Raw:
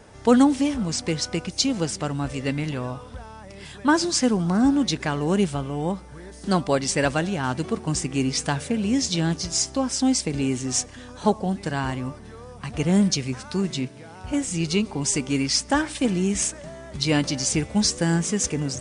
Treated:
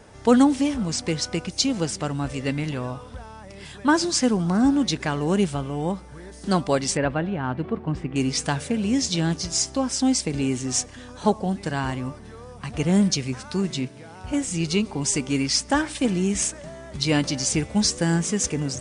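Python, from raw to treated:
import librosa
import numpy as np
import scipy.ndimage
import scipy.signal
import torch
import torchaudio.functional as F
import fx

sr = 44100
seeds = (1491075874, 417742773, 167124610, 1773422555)

y = fx.air_absorb(x, sr, metres=470.0, at=(6.97, 8.16))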